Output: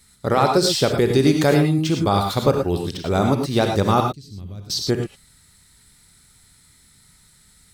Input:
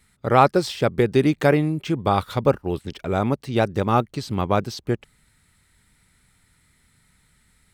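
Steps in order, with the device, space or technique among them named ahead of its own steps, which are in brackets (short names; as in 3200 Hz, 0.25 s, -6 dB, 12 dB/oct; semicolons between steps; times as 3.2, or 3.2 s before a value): over-bright horn tweeter (resonant high shelf 3400 Hz +6.5 dB, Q 1.5; limiter -9.5 dBFS, peak gain reduction 7 dB); 4–4.7 passive tone stack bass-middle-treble 10-0-1; non-linear reverb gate 0.13 s rising, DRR 3.5 dB; gain +2.5 dB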